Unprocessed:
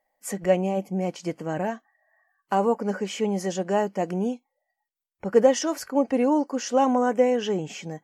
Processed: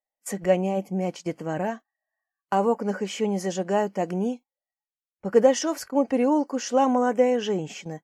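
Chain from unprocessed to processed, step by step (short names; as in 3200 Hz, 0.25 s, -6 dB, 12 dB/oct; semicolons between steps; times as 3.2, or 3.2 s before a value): gate -38 dBFS, range -19 dB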